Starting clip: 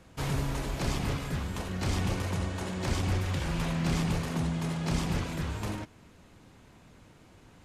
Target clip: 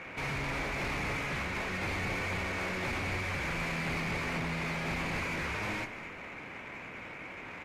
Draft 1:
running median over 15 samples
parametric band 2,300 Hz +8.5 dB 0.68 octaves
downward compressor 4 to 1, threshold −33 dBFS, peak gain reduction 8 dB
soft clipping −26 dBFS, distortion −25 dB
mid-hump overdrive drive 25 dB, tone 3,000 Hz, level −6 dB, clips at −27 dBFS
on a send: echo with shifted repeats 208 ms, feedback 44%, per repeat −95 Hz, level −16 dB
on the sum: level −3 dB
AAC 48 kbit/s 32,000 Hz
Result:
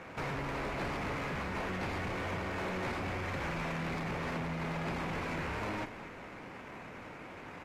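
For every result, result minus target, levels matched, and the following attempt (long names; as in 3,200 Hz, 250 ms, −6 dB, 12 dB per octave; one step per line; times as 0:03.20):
downward compressor: peak gain reduction +8 dB; 2,000 Hz band −2.5 dB
running median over 15 samples
parametric band 2,300 Hz +8.5 dB 0.68 octaves
soft clipping −26 dBFS, distortion −16 dB
mid-hump overdrive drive 25 dB, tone 3,000 Hz, level −6 dB, clips at −27 dBFS
on a send: echo with shifted repeats 208 ms, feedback 44%, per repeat −95 Hz, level −16 dB
on the sum: level −3 dB
AAC 48 kbit/s 32,000 Hz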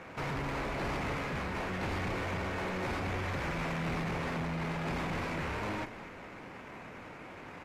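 2,000 Hz band −4.0 dB
running median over 15 samples
parametric band 2,300 Hz +20 dB 0.68 octaves
soft clipping −26 dBFS, distortion −14 dB
mid-hump overdrive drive 25 dB, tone 3,000 Hz, level −6 dB, clips at −27 dBFS
on a send: echo with shifted repeats 208 ms, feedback 44%, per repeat −95 Hz, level −16 dB
on the sum: level −3 dB
AAC 48 kbit/s 32,000 Hz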